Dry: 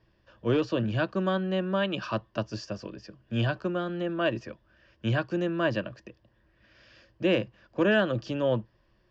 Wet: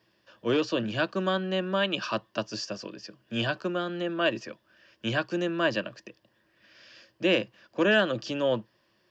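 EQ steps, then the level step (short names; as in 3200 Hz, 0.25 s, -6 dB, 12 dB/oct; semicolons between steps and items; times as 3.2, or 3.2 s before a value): HPF 180 Hz 12 dB/oct; high shelf 2600 Hz +9.5 dB; 0.0 dB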